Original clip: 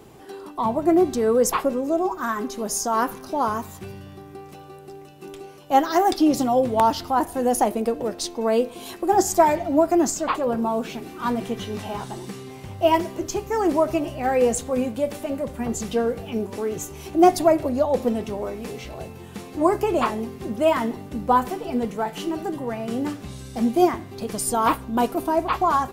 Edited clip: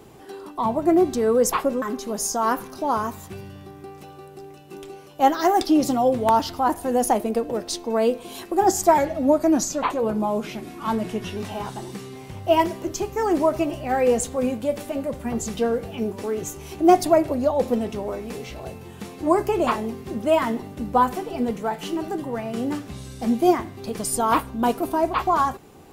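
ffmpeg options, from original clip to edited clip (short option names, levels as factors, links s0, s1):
-filter_complex "[0:a]asplit=4[s0][s1][s2][s3];[s0]atrim=end=1.822[s4];[s1]atrim=start=2.328:end=9.494[s5];[s2]atrim=start=9.49:end=11.71,asetpts=PTS-STARTPTS,asetrate=41013,aresample=44100[s6];[s3]atrim=start=11.706[s7];[s4][s5]acrossfade=d=0.004:c1=hsin:c2=hsin[s8];[s8][s6]acrossfade=d=0.004:c1=hsin:c2=hsin[s9];[s9][s7]acrossfade=d=0.004:c1=hsin:c2=hsin"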